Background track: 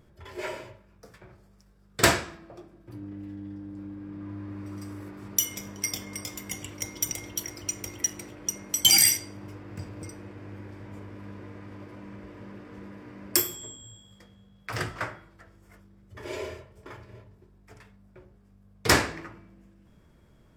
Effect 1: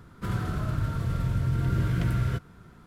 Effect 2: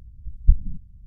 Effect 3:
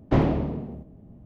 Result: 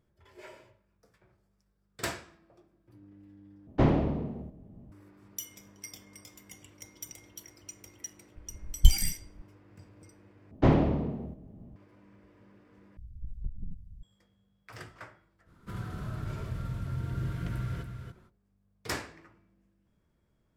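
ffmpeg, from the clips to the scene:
ffmpeg -i bed.wav -i cue0.wav -i cue1.wav -i cue2.wav -filter_complex "[3:a]asplit=2[link_01][link_02];[2:a]asplit=2[link_03][link_04];[0:a]volume=-14.5dB[link_05];[link_03]tremolo=f=5.7:d=0.75[link_06];[link_04]acompressor=threshold=-29dB:ratio=6:attack=3.2:release=140:knee=1:detection=peak[link_07];[1:a]aecho=1:1:285:0.447[link_08];[link_05]asplit=4[link_09][link_10][link_11][link_12];[link_09]atrim=end=3.674[link_13];[link_01]atrim=end=1.25,asetpts=PTS-STARTPTS,volume=-3dB[link_14];[link_10]atrim=start=4.916:end=10.514[link_15];[link_02]atrim=end=1.25,asetpts=PTS-STARTPTS,volume=-1.5dB[link_16];[link_11]atrim=start=11.756:end=12.974[link_17];[link_07]atrim=end=1.06,asetpts=PTS-STARTPTS,volume=-2dB[link_18];[link_12]atrim=start=14.026[link_19];[link_06]atrim=end=1.06,asetpts=PTS-STARTPTS,volume=-1dB,afade=type=in:duration=0.004:curve=hsin,afade=type=out:start_time=1.056:duration=0.004:curve=hsin,adelay=8360[link_20];[link_08]atrim=end=2.86,asetpts=PTS-STARTPTS,volume=-9dB,afade=type=in:duration=0.05,afade=type=out:start_time=2.81:duration=0.05,adelay=15450[link_21];[link_13][link_14]acrossfade=duration=0.004:curve1=hsin:curve2=hsin[link_22];[link_22][link_15]acrossfade=duration=0.004:curve1=hsin:curve2=hsin[link_23];[link_23][link_16]acrossfade=duration=0.004:curve1=hsin:curve2=hsin[link_24];[link_24][link_17]acrossfade=duration=0.004:curve1=hsin:curve2=hsin[link_25];[link_25][link_18]acrossfade=duration=0.004:curve1=hsin:curve2=hsin[link_26];[link_26][link_19]acrossfade=duration=0.004:curve1=hsin:curve2=hsin[link_27];[link_27][link_20][link_21]amix=inputs=3:normalize=0" out.wav

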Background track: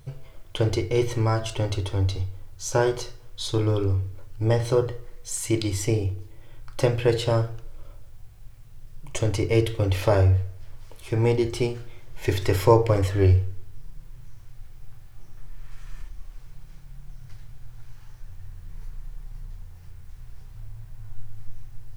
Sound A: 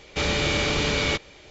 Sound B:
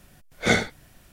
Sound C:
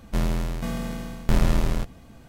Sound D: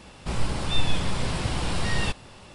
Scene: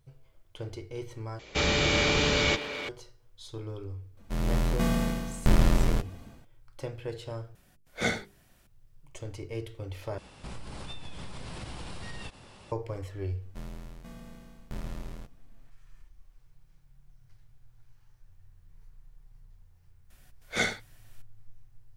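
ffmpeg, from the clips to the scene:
ffmpeg -i bed.wav -i cue0.wav -i cue1.wav -i cue2.wav -i cue3.wav -filter_complex "[3:a]asplit=2[link_01][link_02];[2:a]asplit=2[link_03][link_04];[0:a]volume=-16dB[link_05];[1:a]asplit=2[link_06][link_07];[link_07]adelay=380,highpass=300,lowpass=3400,asoftclip=type=hard:threshold=-21dB,volume=-8dB[link_08];[link_06][link_08]amix=inputs=2:normalize=0[link_09];[link_01]dynaudnorm=framelen=130:gausssize=5:maxgain=14.5dB[link_10];[link_03]bandreject=frequency=50:width_type=h:width=6,bandreject=frequency=100:width_type=h:width=6,bandreject=frequency=150:width_type=h:width=6,bandreject=frequency=200:width_type=h:width=6,bandreject=frequency=250:width_type=h:width=6,bandreject=frequency=300:width_type=h:width=6,bandreject=frequency=350:width_type=h:width=6,bandreject=frequency=400:width_type=h:width=6,bandreject=frequency=450:width_type=h:width=6[link_11];[4:a]acompressor=threshold=-31dB:ratio=6:attack=3.2:release=140:knee=1:detection=peak[link_12];[link_04]tiltshelf=frequency=700:gain=-4[link_13];[link_05]asplit=4[link_14][link_15][link_16][link_17];[link_14]atrim=end=1.394[link_18];[link_09]atrim=end=1.5,asetpts=PTS-STARTPTS,volume=-1.5dB[link_19];[link_15]atrim=start=2.886:end=7.554[link_20];[link_11]atrim=end=1.12,asetpts=PTS-STARTPTS,volume=-8dB[link_21];[link_16]atrim=start=8.666:end=10.184[link_22];[link_12]atrim=end=2.54,asetpts=PTS-STARTPTS,volume=-5dB[link_23];[link_17]atrim=start=12.716[link_24];[link_10]atrim=end=2.28,asetpts=PTS-STARTPTS,volume=-11dB,afade=type=in:duration=0.004:curve=hsin,afade=type=out:start_time=2.276:duration=0.004:curve=hsin,adelay=183897S[link_25];[link_02]atrim=end=2.28,asetpts=PTS-STARTPTS,volume=-17.5dB,afade=type=in:duration=0.004:curve=hsin,afade=type=out:start_time=2.276:duration=0.004:curve=hsin,adelay=13420[link_26];[link_13]atrim=end=1.12,asetpts=PTS-STARTPTS,volume=-9dB,afade=type=in:duration=0.004:curve=hsin,afade=type=out:start_time=1.116:duration=0.004:curve=hsin,adelay=20100[link_27];[link_18][link_19]acrossfade=duration=0.004:curve1=hsin:curve2=hsin[link_28];[link_28][link_20]acrossfade=duration=0.004:curve1=hsin:curve2=hsin[link_29];[link_29][link_21]acrossfade=duration=0.004:curve1=hsin:curve2=hsin[link_30];[link_30][link_22]acrossfade=duration=0.004:curve1=hsin:curve2=hsin[link_31];[link_31][link_23]acrossfade=duration=0.004:curve1=hsin:curve2=hsin[link_32];[link_32][link_24]acrossfade=duration=0.004:curve1=hsin:curve2=hsin[link_33];[link_33][link_25][link_26][link_27]amix=inputs=4:normalize=0" out.wav

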